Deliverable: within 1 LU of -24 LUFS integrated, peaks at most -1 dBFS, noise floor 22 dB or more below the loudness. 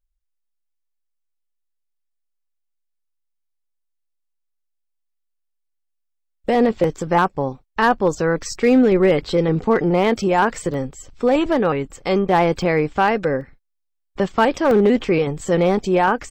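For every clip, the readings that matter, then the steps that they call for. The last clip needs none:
clipped 0.7%; flat tops at -8.0 dBFS; dropouts 5; longest dropout 1.4 ms; loudness -18.5 LUFS; peak -8.0 dBFS; loudness target -24.0 LUFS
-> clip repair -8 dBFS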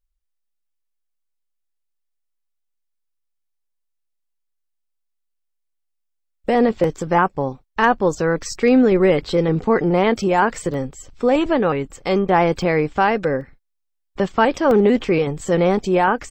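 clipped 0.0%; dropouts 5; longest dropout 1.4 ms
-> interpolate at 6.84/10.74/12.62/13.41/14.71, 1.4 ms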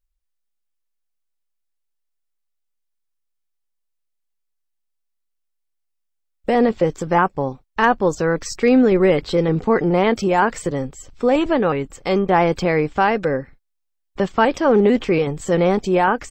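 dropouts 0; loudness -18.5 LUFS; peak -1.5 dBFS; loudness target -24.0 LUFS
-> gain -5.5 dB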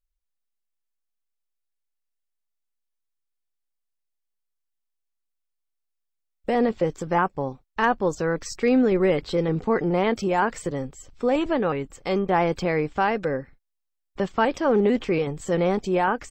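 loudness -24.0 LUFS; peak -7.0 dBFS; noise floor -79 dBFS

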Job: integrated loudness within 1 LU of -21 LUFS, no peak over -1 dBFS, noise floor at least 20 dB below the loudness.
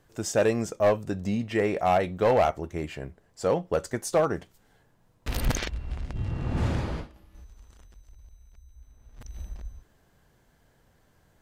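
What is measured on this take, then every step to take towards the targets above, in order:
clipped 0.5%; flat tops at -15.5 dBFS; loudness -27.5 LUFS; peak -15.5 dBFS; loudness target -21.0 LUFS
-> clip repair -15.5 dBFS; gain +6.5 dB

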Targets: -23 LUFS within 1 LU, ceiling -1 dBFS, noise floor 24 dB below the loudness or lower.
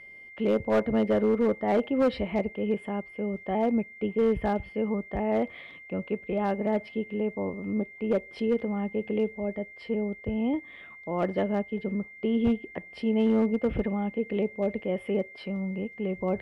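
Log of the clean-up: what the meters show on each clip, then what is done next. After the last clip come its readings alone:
clipped 0.9%; flat tops at -18.0 dBFS; steady tone 2100 Hz; tone level -45 dBFS; loudness -29.0 LUFS; peak -18.0 dBFS; loudness target -23.0 LUFS
-> clip repair -18 dBFS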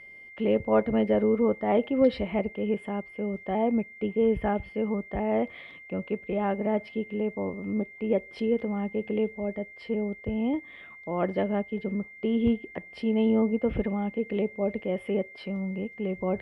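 clipped 0.0%; steady tone 2100 Hz; tone level -45 dBFS
-> notch 2100 Hz, Q 30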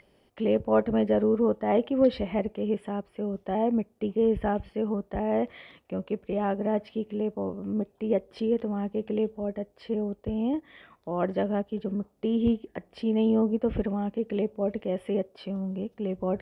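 steady tone none; loudness -28.5 LUFS; peak -10.5 dBFS; loudness target -23.0 LUFS
-> gain +5.5 dB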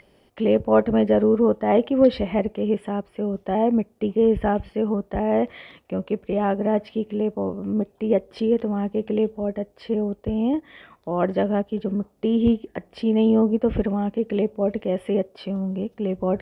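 loudness -23.0 LUFS; peak -5.0 dBFS; noise floor -59 dBFS

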